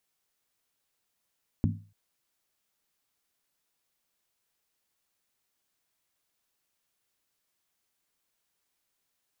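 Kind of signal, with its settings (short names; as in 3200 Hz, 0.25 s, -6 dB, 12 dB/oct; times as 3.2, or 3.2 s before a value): skin hit length 0.29 s, lowest mode 102 Hz, decay 0.40 s, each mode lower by 2 dB, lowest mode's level -22 dB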